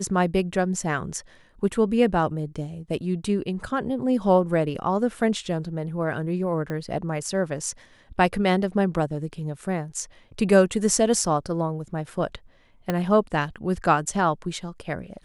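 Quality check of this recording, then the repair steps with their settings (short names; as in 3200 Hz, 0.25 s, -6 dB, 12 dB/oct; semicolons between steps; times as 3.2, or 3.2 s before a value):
6.7 pop -19 dBFS
12.9 pop -11 dBFS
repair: de-click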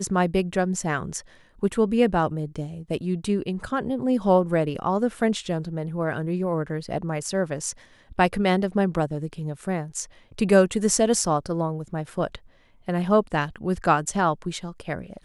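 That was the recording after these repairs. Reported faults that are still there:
6.7 pop
12.9 pop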